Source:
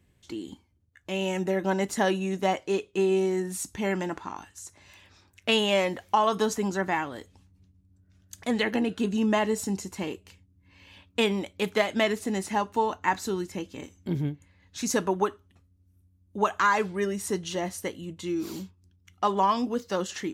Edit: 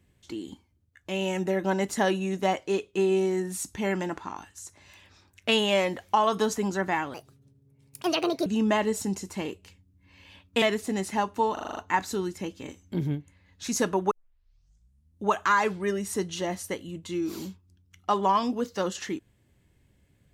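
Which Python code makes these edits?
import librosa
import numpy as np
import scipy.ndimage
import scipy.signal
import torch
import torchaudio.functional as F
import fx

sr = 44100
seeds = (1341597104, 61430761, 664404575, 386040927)

y = fx.edit(x, sr, fx.speed_span(start_s=7.14, length_s=1.94, speed=1.47),
    fx.cut(start_s=11.24, length_s=0.76),
    fx.stutter(start_s=12.91, slice_s=0.04, count=7),
    fx.tape_start(start_s=15.25, length_s=1.12), tone=tone)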